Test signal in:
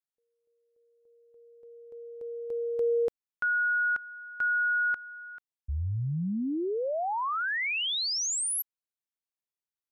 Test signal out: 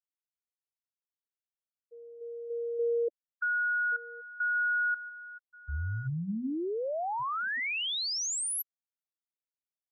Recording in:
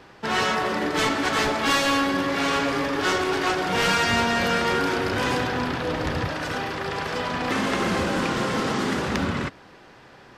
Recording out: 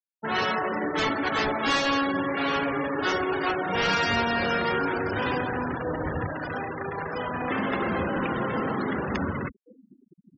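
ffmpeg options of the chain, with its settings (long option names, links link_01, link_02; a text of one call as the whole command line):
ffmpeg -i in.wav -filter_complex "[0:a]bandreject=frequency=60:width_type=h:width=6,bandreject=frequency=120:width_type=h:width=6,bandreject=frequency=180:width_type=h:width=6,bandreject=frequency=240:width_type=h:width=6,asplit=2[link_01][link_02];[link_02]adelay=1129,lowpass=frequency=2700:poles=1,volume=-18.5dB,asplit=2[link_03][link_04];[link_04]adelay=1129,lowpass=frequency=2700:poles=1,volume=0.52,asplit=2[link_05][link_06];[link_06]adelay=1129,lowpass=frequency=2700:poles=1,volume=0.52,asplit=2[link_07][link_08];[link_08]adelay=1129,lowpass=frequency=2700:poles=1,volume=0.52[link_09];[link_03][link_05][link_07][link_09]amix=inputs=4:normalize=0[link_10];[link_01][link_10]amix=inputs=2:normalize=0,afftfilt=real='re*gte(hypot(re,im),0.0562)':imag='im*gte(hypot(re,im),0.0562)':win_size=1024:overlap=0.75,volume=-2.5dB" out.wav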